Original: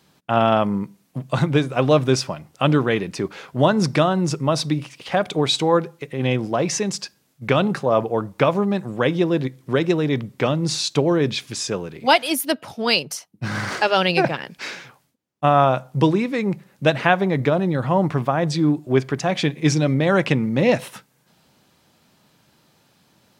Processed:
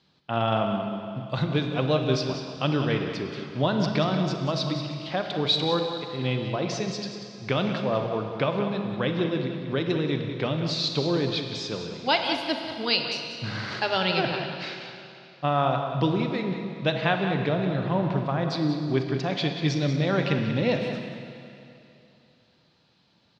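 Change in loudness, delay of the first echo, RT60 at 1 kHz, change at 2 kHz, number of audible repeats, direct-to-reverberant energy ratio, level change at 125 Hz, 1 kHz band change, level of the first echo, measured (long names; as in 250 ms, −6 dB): −6.0 dB, 186 ms, 2.8 s, −6.0 dB, 1, 3.5 dB, −5.0 dB, −7.0 dB, −10.0 dB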